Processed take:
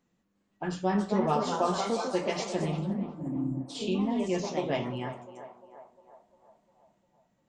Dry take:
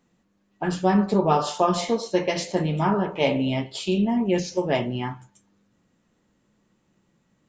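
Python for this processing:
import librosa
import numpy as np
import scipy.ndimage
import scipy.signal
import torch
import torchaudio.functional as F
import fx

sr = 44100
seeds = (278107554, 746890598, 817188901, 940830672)

y = fx.spec_erase(x, sr, start_s=2.79, length_s=0.95, low_hz=350.0, high_hz=6900.0)
y = fx.echo_banded(y, sr, ms=351, feedback_pct=62, hz=770.0, wet_db=-10.0)
y = fx.echo_pitch(y, sr, ms=357, semitones=2, count=2, db_per_echo=-6.0)
y = y * librosa.db_to_amplitude(-7.5)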